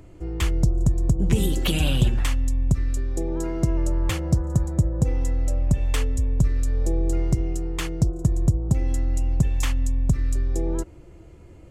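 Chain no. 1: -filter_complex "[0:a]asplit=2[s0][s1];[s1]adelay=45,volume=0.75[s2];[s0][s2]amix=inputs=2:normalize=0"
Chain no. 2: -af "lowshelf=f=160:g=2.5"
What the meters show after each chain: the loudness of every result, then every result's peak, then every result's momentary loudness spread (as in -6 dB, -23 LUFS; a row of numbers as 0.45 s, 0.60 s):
-21.5 LUFS, -22.5 LUFS; -5.5 dBFS, -6.5 dBFS; 5 LU, 6 LU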